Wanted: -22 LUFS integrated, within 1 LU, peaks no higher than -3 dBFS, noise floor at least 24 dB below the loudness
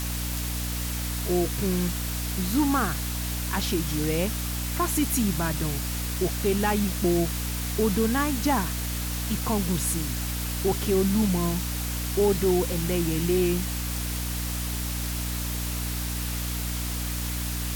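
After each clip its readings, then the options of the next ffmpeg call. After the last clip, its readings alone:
hum 60 Hz; highest harmonic 300 Hz; hum level -28 dBFS; noise floor -30 dBFS; noise floor target -51 dBFS; loudness -26.5 LUFS; peak level -12.0 dBFS; loudness target -22.0 LUFS
-> -af "bandreject=f=60:t=h:w=4,bandreject=f=120:t=h:w=4,bandreject=f=180:t=h:w=4,bandreject=f=240:t=h:w=4,bandreject=f=300:t=h:w=4"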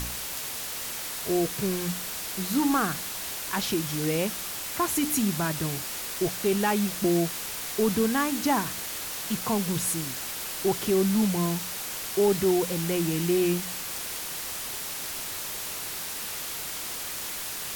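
hum not found; noise floor -35 dBFS; noise floor target -52 dBFS
-> -af "afftdn=nr=17:nf=-35"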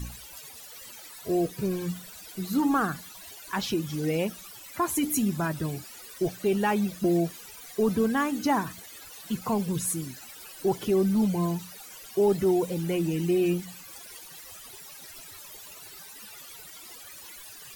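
noise floor -46 dBFS; noise floor target -52 dBFS
-> -af "afftdn=nr=6:nf=-46"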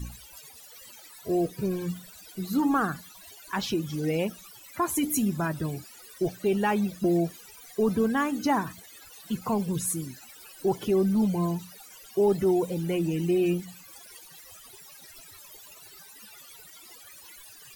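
noise floor -50 dBFS; noise floor target -52 dBFS
-> -af "afftdn=nr=6:nf=-50"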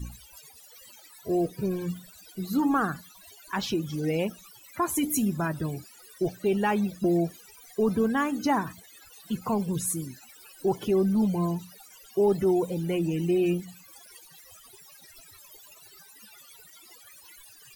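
noise floor -53 dBFS; loudness -27.5 LUFS; peak level -14.5 dBFS; loudness target -22.0 LUFS
-> -af "volume=1.88"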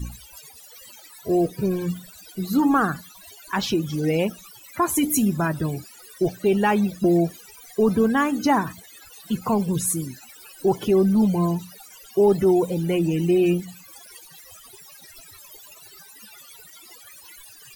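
loudness -22.0 LUFS; peak level -9.0 dBFS; noise floor -47 dBFS

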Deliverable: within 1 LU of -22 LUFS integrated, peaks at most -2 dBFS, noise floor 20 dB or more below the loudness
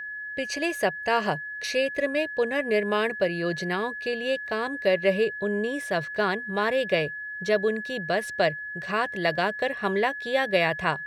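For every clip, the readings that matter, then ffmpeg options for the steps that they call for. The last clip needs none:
steady tone 1.7 kHz; tone level -33 dBFS; loudness -26.5 LUFS; peak level -9.0 dBFS; loudness target -22.0 LUFS
-> -af "bandreject=f=1700:w=30"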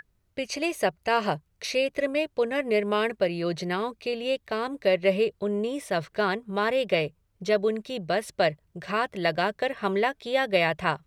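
steady tone not found; loudness -27.0 LUFS; peak level -9.5 dBFS; loudness target -22.0 LUFS
-> -af "volume=1.78"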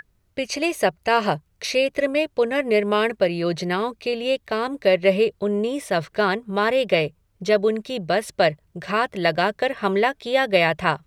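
loudness -22.0 LUFS; peak level -4.5 dBFS; noise floor -65 dBFS

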